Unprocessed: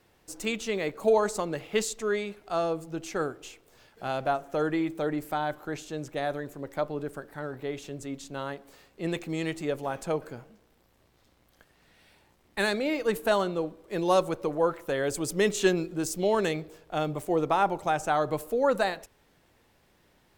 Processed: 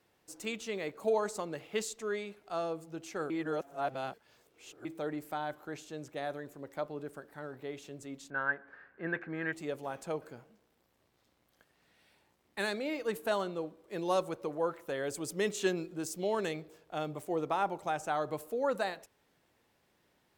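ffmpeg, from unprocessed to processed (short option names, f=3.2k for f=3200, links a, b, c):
-filter_complex "[0:a]asettb=1/sr,asplit=3[a][b][c];[a]atrim=end=8.304[d];[b]atrim=start=8.3:end=9.53,asetpts=PTS-STARTPTS,afade=t=in:d=0.004:c=qsin,afade=t=out:st=1.226:d=0.004:c=qsin,lowpass=f=1.6k:t=q:w=16[e];[c]atrim=start=9.526[f];[d][e]acrossfade=d=0.004:c1=hsin:c2=qsin[g];[g][f]acrossfade=d=0.004:c1=qsin:c2=hsin,asplit=3[h][i][j];[h]atrim=end=3.302[k];[i]atrim=start=3.298:end=4.852,asetpts=PTS-STARTPTS,areverse[l];[j]atrim=start=4.848[m];[k][l]acrossfade=d=0.004:c1=hsin:c2=hsin[n];[n][m]acrossfade=d=0.004:c1=hsin:c2=hsin,highpass=f=120:p=1,volume=-7dB"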